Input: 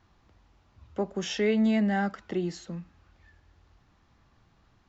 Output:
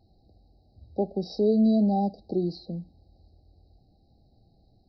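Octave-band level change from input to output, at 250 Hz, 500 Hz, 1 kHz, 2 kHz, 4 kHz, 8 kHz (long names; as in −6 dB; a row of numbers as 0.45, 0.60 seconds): +3.0 dB, +3.0 dB, +2.0 dB, below −40 dB, −6.5 dB, can't be measured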